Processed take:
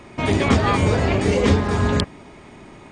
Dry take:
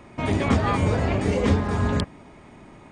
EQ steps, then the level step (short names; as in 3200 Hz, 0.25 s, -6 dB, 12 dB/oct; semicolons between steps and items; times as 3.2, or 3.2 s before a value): bell 390 Hz +3.5 dB 0.41 oct; bell 4600 Hz +5 dB 2.4 oct; +3.0 dB